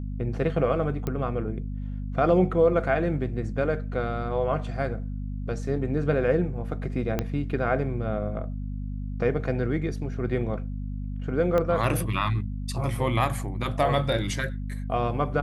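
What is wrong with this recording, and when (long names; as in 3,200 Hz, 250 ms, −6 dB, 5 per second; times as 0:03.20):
mains hum 50 Hz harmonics 5 −32 dBFS
0:01.07: click −17 dBFS
0:07.19: click −12 dBFS
0:11.58: click −14 dBFS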